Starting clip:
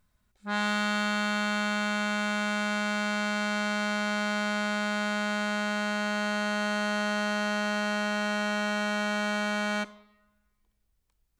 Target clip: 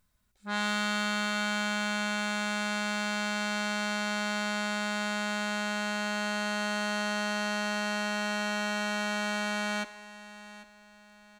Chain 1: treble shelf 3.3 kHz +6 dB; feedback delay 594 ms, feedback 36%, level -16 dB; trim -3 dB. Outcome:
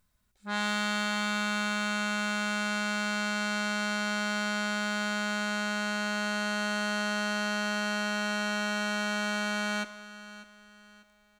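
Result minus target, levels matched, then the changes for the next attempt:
echo 201 ms early
change: feedback delay 795 ms, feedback 36%, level -16 dB

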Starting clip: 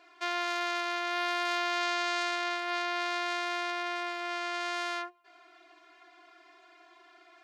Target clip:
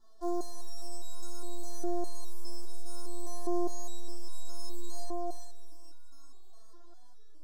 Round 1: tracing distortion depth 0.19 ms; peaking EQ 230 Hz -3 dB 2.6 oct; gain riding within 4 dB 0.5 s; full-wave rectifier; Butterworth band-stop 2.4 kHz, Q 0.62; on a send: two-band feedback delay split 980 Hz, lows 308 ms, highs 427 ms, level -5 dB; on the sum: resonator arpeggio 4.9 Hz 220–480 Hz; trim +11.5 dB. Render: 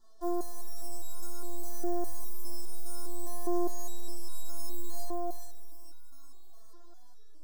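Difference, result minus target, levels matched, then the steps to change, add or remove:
4 kHz band -3.5 dB
add after tracing distortion: low-pass 4.2 kHz 12 dB/octave

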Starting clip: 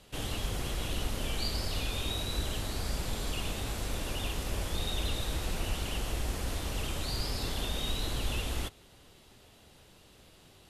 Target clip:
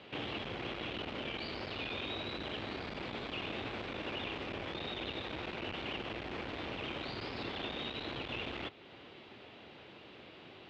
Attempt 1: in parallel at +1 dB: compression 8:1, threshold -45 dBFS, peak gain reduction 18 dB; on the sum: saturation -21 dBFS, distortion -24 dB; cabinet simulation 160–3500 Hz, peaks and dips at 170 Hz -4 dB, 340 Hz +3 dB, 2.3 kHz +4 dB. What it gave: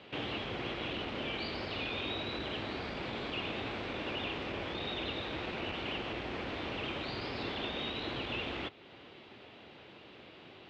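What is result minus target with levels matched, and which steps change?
saturation: distortion -12 dB
change: saturation -30 dBFS, distortion -12 dB

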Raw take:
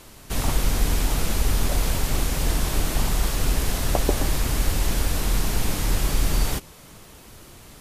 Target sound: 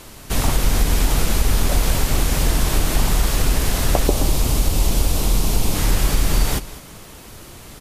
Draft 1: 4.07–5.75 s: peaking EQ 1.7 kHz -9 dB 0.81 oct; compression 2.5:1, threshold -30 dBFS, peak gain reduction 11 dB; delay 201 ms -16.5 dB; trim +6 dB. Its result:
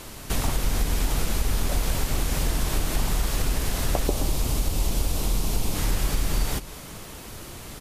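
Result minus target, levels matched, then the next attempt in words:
compression: peak gain reduction +7 dB
4.07–5.75 s: peaking EQ 1.7 kHz -9 dB 0.81 oct; compression 2.5:1, threshold -18 dBFS, peak gain reduction 4 dB; delay 201 ms -16.5 dB; trim +6 dB

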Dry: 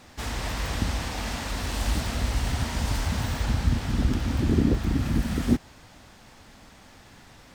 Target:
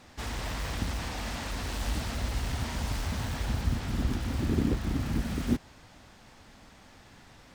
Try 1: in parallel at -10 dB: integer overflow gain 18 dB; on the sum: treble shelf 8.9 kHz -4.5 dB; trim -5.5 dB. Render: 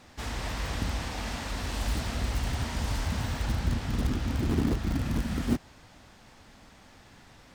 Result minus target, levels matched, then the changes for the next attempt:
integer overflow: distortion -15 dB
change: integer overflow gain 24.5 dB

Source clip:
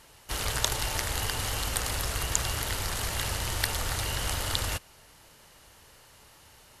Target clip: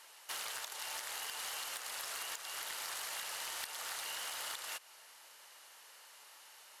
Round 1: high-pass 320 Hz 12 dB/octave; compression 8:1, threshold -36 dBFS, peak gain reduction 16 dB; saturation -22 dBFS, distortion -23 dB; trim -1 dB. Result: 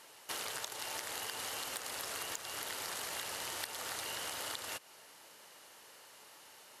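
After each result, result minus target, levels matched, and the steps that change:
250 Hz band +11.5 dB; saturation: distortion -9 dB
change: high-pass 790 Hz 12 dB/octave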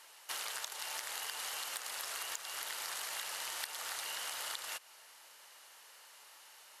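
saturation: distortion -9 dB
change: saturation -31 dBFS, distortion -14 dB

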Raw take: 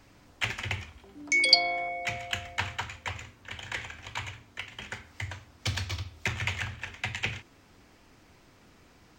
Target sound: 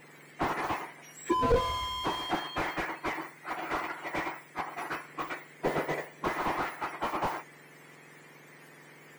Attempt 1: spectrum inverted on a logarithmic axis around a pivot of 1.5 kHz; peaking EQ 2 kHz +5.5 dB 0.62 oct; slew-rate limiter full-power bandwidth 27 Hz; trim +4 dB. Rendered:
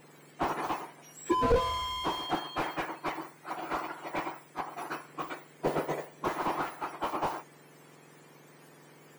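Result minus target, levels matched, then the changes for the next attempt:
2 kHz band -3.5 dB
change: peaking EQ 2 kHz +16 dB 0.62 oct

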